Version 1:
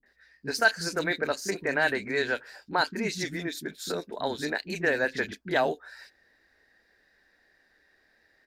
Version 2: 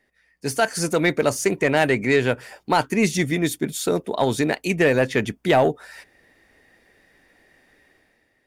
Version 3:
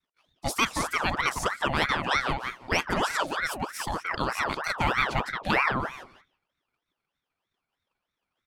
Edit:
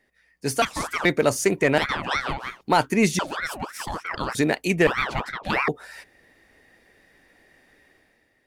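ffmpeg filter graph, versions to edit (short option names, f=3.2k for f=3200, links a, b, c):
-filter_complex "[2:a]asplit=4[a][b][c][d];[1:a]asplit=5[e][f][g][h][i];[e]atrim=end=0.622[j];[a]atrim=start=0.618:end=1.052[k];[f]atrim=start=1.048:end=1.782[l];[b]atrim=start=1.778:end=2.612[m];[g]atrim=start=2.608:end=3.192[n];[c]atrim=start=3.188:end=4.352[o];[h]atrim=start=4.348:end=4.872[p];[d]atrim=start=4.868:end=5.682[q];[i]atrim=start=5.678[r];[j][k]acrossfade=d=0.004:c1=hsin:c2=hsin[s];[s][l]acrossfade=d=0.004:c1=hsin:c2=hsin[t];[t][m]acrossfade=d=0.004:c1=hsin:c2=hsin[u];[u][n]acrossfade=d=0.004:c1=hsin:c2=hsin[v];[v][o]acrossfade=d=0.004:c1=hsin:c2=hsin[w];[w][p]acrossfade=d=0.004:c1=hsin:c2=hsin[x];[x][q]acrossfade=d=0.004:c1=hsin:c2=hsin[y];[y][r]acrossfade=d=0.004:c1=hsin:c2=hsin"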